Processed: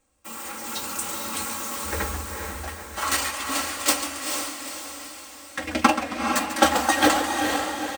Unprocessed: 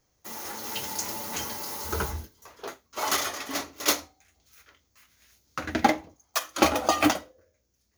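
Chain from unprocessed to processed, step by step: formant shift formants +5 st; comb 3.7 ms, depth 72%; on a send: diffused feedback echo 0.454 s, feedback 51%, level -4.5 dB; on the sum: warbling echo 0.136 s, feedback 44%, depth 175 cents, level -11 dB

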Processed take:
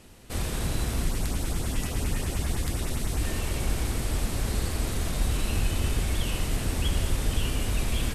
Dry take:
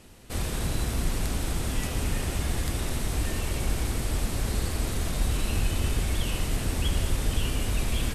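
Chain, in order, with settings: 1.05–3.22 LFO notch saw up 9.9 Hz 430–4500 Hz

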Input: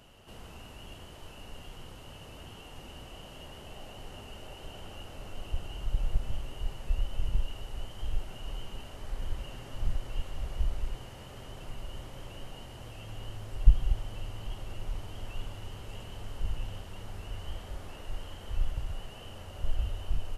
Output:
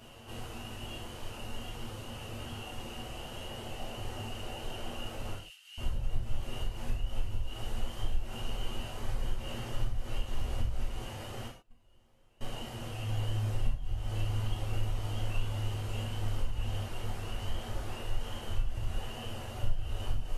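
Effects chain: compressor 12:1, threshold -30 dBFS, peak gain reduction 20.5 dB; 11.47–12.41 gate -31 dBFS, range -27 dB; reverb removal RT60 0.6 s; 5.34–5.78 ladder high-pass 1800 Hz, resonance 20%; non-linear reverb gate 0.17 s falling, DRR -4.5 dB; gain +1 dB

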